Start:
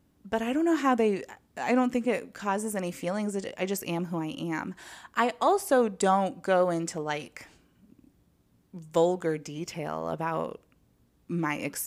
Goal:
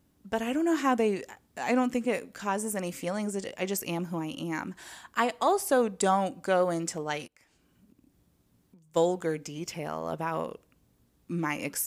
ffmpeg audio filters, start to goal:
ffmpeg -i in.wav -filter_complex "[0:a]highshelf=frequency=4200:gain=5,asplit=3[link_01][link_02][link_03];[link_01]afade=type=out:start_time=7.26:duration=0.02[link_04];[link_02]acompressor=threshold=-54dB:ratio=16,afade=type=in:start_time=7.26:duration=0.02,afade=type=out:start_time=8.95:duration=0.02[link_05];[link_03]afade=type=in:start_time=8.95:duration=0.02[link_06];[link_04][link_05][link_06]amix=inputs=3:normalize=0,volume=-1.5dB" out.wav

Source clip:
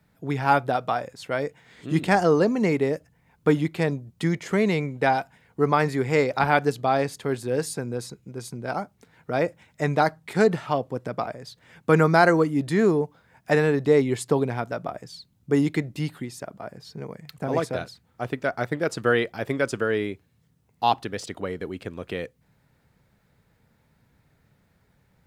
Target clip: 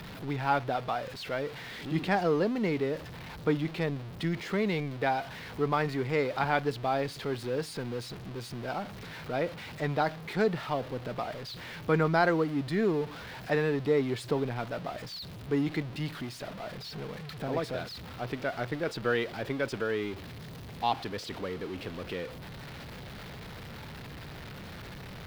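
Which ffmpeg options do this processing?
ffmpeg -i in.wav -af "aeval=exprs='val(0)+0.5*0.0355*sgn(val(0))':channel_layout=same,highshelf=frequency=5500:width_type=q:width=1.5:gain=-8,volume=-8.5dB" out.wav

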